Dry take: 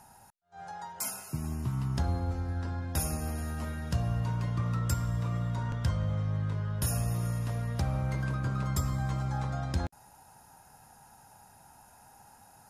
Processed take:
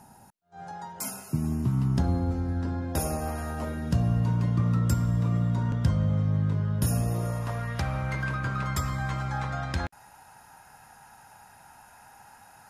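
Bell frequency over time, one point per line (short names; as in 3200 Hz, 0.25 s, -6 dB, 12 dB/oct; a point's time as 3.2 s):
bell +10 dB 2.1 oct
2.64 s 230 Hz
3.4 s 1000 Hz
3.95 s 220 Hz
6.9 s 220 Hz
7.74 s 1900 Hz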